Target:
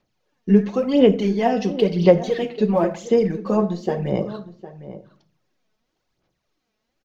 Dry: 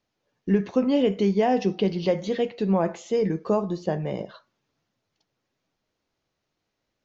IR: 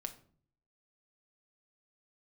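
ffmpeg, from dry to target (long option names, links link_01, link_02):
-filter_complex "[0:a]aphaser=in_gain=1:out_gain=1:delay=4.7:decay=0.62:speed=0.96:type=sinusoidal,asplit=2[link_01][link_02];[link_02]adelay=758,volume=-14dB,highshelf=frequency=4000:gain=-17.1[link_03];[link_01][link_03]amix=inputs=2:normalize=0,asplit=2[link_04][link_05];[1:a]atrim=start_sample=2205[link_06];[link_05][link_06]afir=irnorm=-1:irlink=0,volume=4.5dB[link_07];[link_04][link_07]amix=inputs=2:normalize=0,volume=-6dB"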